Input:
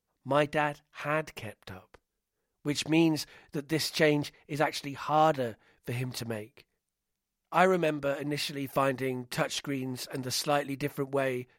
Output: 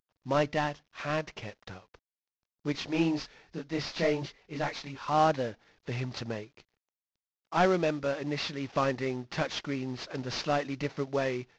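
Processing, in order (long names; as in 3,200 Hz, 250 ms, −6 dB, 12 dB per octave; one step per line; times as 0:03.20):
variable-slope delta modulation 32 kbit/s
0:02.72–0:05.08: multi-voice chorus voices 6, 1.2 Hz, delay 26 ms, depth 3.8 ms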